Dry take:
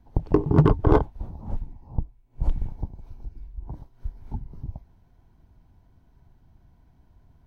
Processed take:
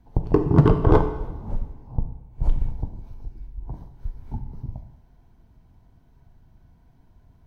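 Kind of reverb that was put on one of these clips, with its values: two-slope reverb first 0.83 s, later 2.4 s, from -18 dB, DRR 6 dB; gain +1 dB

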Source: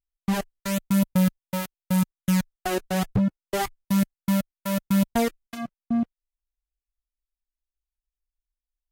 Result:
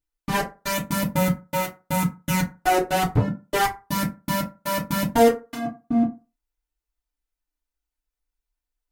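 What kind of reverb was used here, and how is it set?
FDN reverb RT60 0.3 s, low-frequency decay 0.9×, high-frequency decay 0.5×, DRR -5.5 dB

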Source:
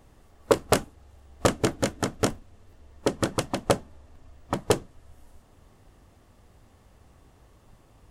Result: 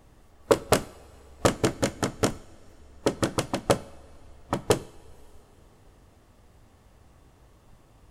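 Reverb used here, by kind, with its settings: two-slope reverb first 0.59 s, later 3.9 s, from -16 dB, DRR 16.5 dB

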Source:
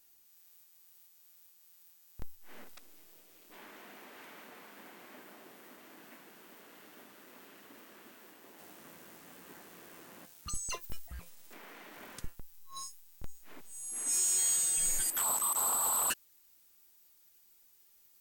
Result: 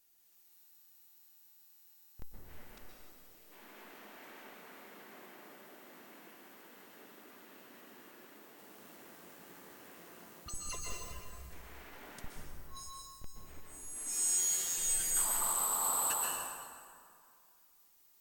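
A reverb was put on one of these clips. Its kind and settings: plate-style reverb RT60 2.3 s, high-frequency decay 0.65×, pre-delay 0.11 s, DRR -3 dB; gain -5.5 dB

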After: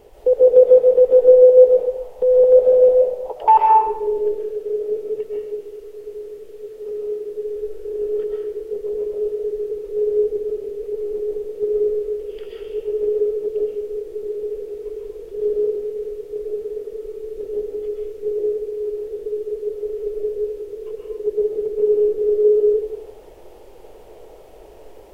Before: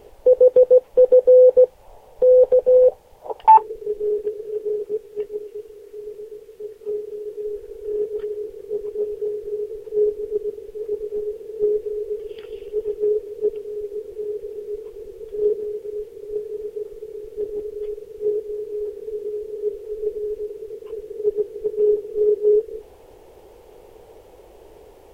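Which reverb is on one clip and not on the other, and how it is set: digital reverb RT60 0.83 s, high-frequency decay 0.8×, pre-delay 90 ms, DRR -3 dB; gain -2 dB

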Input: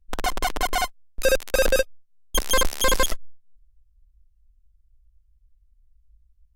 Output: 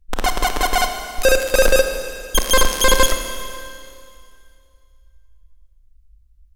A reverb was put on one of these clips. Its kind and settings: Schroeder reverb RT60 2.4 s, combs from 28 ms, DRR 6 dB; gain +5.5 dB

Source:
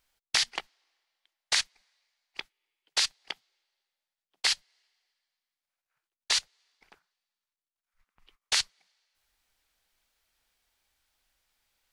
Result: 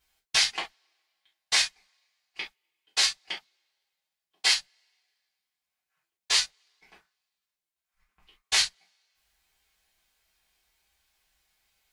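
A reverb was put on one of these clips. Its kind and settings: non-linear reverb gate 90 ms falling, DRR -7 dB; gain -4.5 dB

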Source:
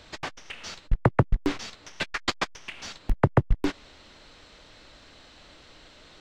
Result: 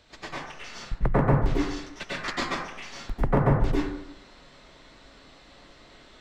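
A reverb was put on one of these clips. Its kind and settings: plate-style reverb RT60 0.81 s, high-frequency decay 0.4×, pre-delay 85 ms, DRR -8.5 dB; gain -8.5 dB

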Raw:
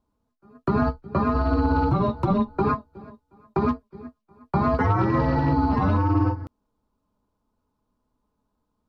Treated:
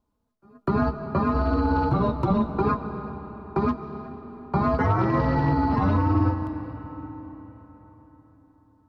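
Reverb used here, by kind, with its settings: digital reverb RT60 4.6 s, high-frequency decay 0.65×, pre-delay 0.105 s, DRR 9.5 dB; gain -1 dB

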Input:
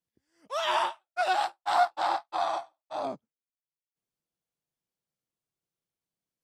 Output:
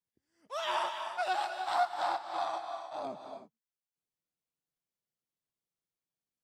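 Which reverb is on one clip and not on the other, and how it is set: non-linear reverb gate 0.34 s rising, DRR 6 dB; gain -6 dB

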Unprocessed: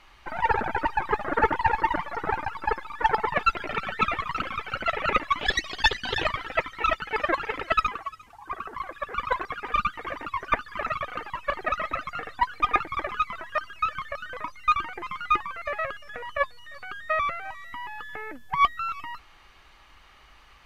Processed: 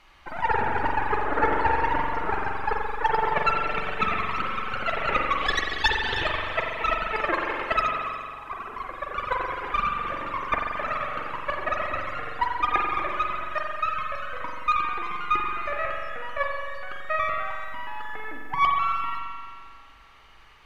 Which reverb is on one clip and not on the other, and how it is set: spring tank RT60 2.1 s, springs 43 ms, chirp 45 ms, DRR 0 dB; gain -2 dB

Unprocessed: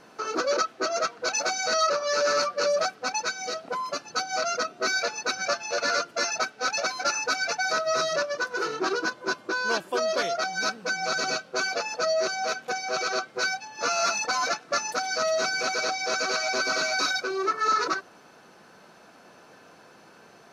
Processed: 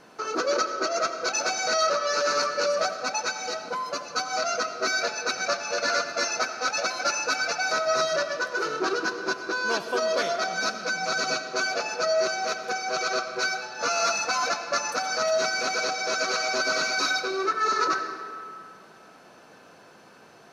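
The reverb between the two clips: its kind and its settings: digital reverb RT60 2.3 s, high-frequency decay 0.65×, pre-delay 45 ms, DRR 7.5 dB

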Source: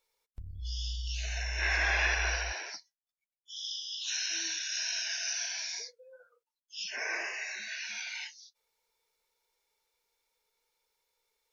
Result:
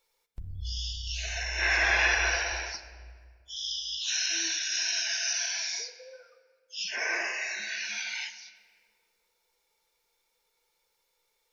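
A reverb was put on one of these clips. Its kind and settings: shoebox room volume 2900 m³, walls mixed, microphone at 0.8 m; gain +4 dB

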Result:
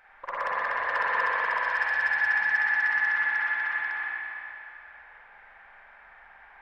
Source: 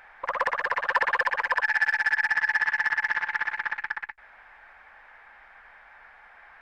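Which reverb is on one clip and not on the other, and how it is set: spring tank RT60 2.8 s, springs 41/46 ms, chirp 40 ms, DRR -6.5 dB; gain -8 dB

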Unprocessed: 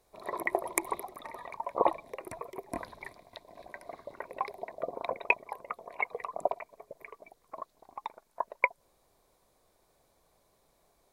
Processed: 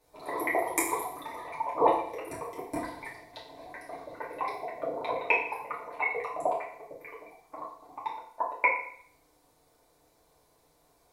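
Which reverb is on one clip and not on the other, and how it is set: FDN reverb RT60 0.61 s, low-frequency decay 0.85×, high-frequency decay 1×, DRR -7 dB; gain -4 dB

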